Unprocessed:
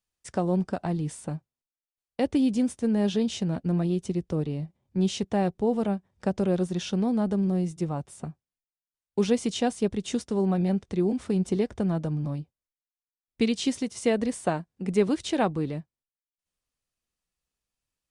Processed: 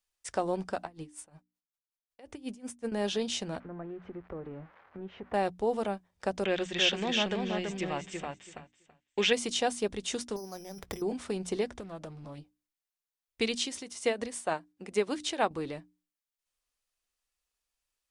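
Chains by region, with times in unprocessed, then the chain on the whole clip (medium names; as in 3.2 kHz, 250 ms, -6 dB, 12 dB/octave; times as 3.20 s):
0.83–2.92 s: dynamic bell 3.9 kHz, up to -6 dB, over -57 dBFS, Q 2.2 + logarithmic tremolo 5.4 Hz, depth 26 dB
3.60–5.34 s: zero-crossing glitches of -28 dBFS + low-pass 1.7 kHz 24 dB/octave + compression 3:1, threshold -31 dBFS
6.45–9.33 s: brick-wall FIR low-pass 8.3 kHz + high-order bell 2.4 kHz +12 dB 1.3 oct + feedback delay 330 ms, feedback 16%, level -4 dB
10.36–11.02 s: compressor with a negative ratio -34 dBFS + careless resampling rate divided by 8×, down filtered, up hold
11.70–12.38 s: compression 5:1, threshold -31 dBFS + loudspeaker Doppler distortion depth 0.16 ms
13.58–15.51 s: high-pass 51 Hz + tremolo triangle 6.6 Hz, depth 70%
whole clip: peaking EQ 150 Hz -15 dB 2.3 oct; hum notches 60/120/180/240/300 Hz; trim +2 dB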